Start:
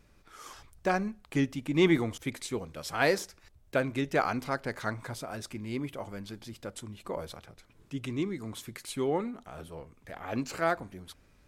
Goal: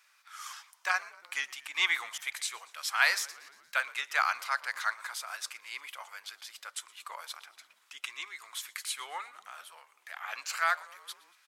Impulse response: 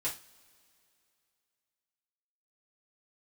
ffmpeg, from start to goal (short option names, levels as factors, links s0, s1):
-filter_complex "[0:a]highpass=f=1100:w=0.5412,highpass=f=1100:w=1.3066,asplit=6[s0][s1][s2][s3][s4][s5];[s1]adelay=117,afreqshift=-71,volume=0.0794[s6];[s2]adelay=234,afreqshift=-142,volume=0.0484[s7];[s3]adelay=351,afreqshift=-213,volume=0.0295[s8];[s4]adelay=468,afreqshift=-284,volume=0.018[s9];[s5]adelay=585,afreqshift=-355,volume=0.011[s10];[s0][s6][s7][s8][s9][s10]amix=inputs=6:normalize=0,volume=1.88"